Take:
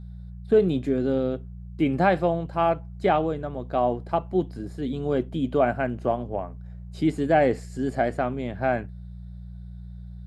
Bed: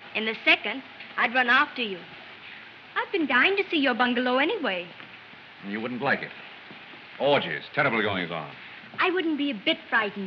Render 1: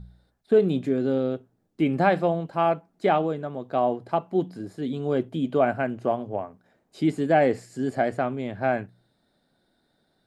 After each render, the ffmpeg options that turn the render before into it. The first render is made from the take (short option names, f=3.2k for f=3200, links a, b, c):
-af "bandreject=f=60:t=h:w=4,bandreject=f=120:t=h:w=4,bandreject=f=180:t=h:w=4"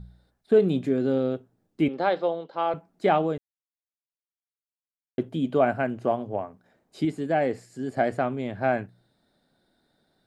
-filter_complex "[0:a]asettb=1/sr,asplit=3[a][b][c];[a]atrim=end=1.884[d];[b]atrim=start=1.88:end=2.74,asetpts=PTS-STARTPTS,afade=t=in:d=0.004:c=qsin,afade=t=out:st=0.856:d=0.004:c=qsin,highpass=430,equalizer=f=480:t=q:w=4:g=4,equalizer=f=690:t=q:w=4:g=-6,equalizer=f=1.1k:t=q:w=4:g=-3,equalizer=f=1.7k:t=q:w=4:g=-6,equalizer=f=2.5k:t=q:w=4:g=-8,equalizer=f=3.6k:t=q:w=4:g=5,lowpass=f=4.9k:w=0.5412,lowpass=f=4.9k:w=1.3066[e];[c]atrim=start=2.736[f];[d][e]acrossfade=d=0.004:c1=hsin:c2=qsin[g];[g][f]acrossfade=d=0.004:c1=qsin:c2=hsin,asplit=5[h][i][j][k][l];[h]atrim=end=3.38,asetpts=PTS-STARTPTS,afade=t=out:st=3.376:d=0.004:c=hsin[m];[i]atrim=start=3.38:end=5.18,asetpts=PTS-STARTPTS,volume=0[n];[j]atrim=start=5.18:end=7.052,asetpts=PTS-STARTPTS,afade=t=in:d=0.004:c=hsin[o];[k]atrim=start=7.048:end=7.972,asetpts=PTS-STARTPTS,volume=-4.5dB[p];[l]atrim=start=7.968[q];[m][n][o]concat=n=3:v=0:a=1[r];[r][p]acrossfade=d=0.004:c1=hsin:c2=hsin[s];[s][q]acrossfade=d=0.004:c1=hsin:c2=hsin"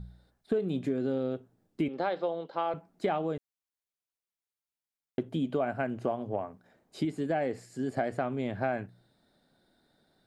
-af "acompressor=threshold=-27dB:ratio=5"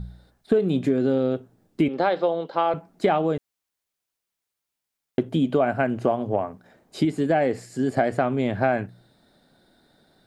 -af "volume=9dB"